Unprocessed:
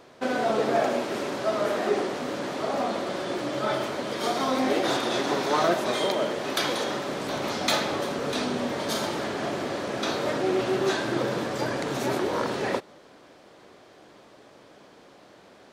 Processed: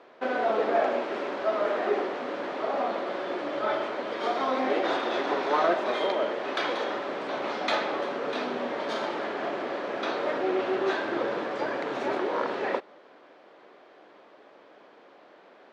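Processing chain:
band-pass filter 340–2,700 Hz

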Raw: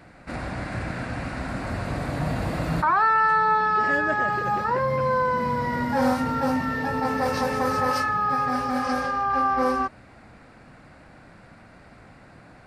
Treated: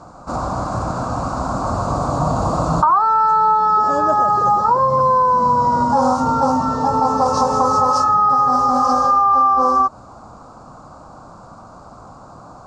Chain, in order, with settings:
drawn EQ curve 400 Hz 0 dB, 1,200 Hz +11 dB, 1,900 Hz −24 dB, 6,900 Hz +10 dB, 13,000 Hz −23 dB
downward compressor, threshold −18 dBFS, peak gain reduction 9 dB
level +6.5 dB

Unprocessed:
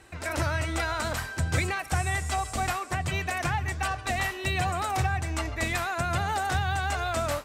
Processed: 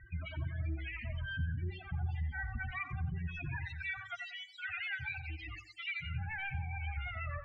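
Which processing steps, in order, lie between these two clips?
phase distortion by the signal itself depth 0.88 ms
parametric band 470 Hz −11 dB 1.7 octaves
brickwall limiter −27 dBFS, peak gain reduction 11 dB
0:03.57–0:06.02: spectral tilt +3.5 dB per octave
spectral peaks only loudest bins 8
downward compressor 2 to 1, threshold −41 dBFS, peak gain reduction 6 dB
Chebyshev low-pass filter 2,600 Hz, order 3
tape delay 89 ms, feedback 41%, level −6.5 dB, low-pass 1,400 Hz
level +5 dB

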